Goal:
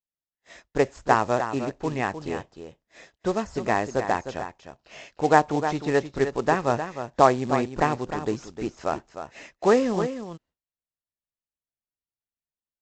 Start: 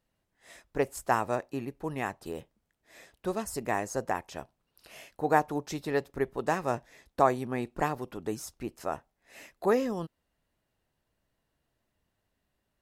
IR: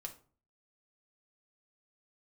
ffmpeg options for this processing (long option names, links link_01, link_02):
-filter_complex "[0:a]acrossover=split=3400[link_01][link_02];[link_02]acompressor=threshold=-52dB:ratio=4:attack=1:release=60[link_03];[link_01][link_03]amix=inputs=2:normalize=0,agate=range=-33dB:threshold=-50dB:ratio=3:detection=peak,aecho=1:1:307:0.335,aresample=16000,acrusher=bits=5:mode=log:mix=0:aa=0.000001,aresample=44100,volume=6.5dB"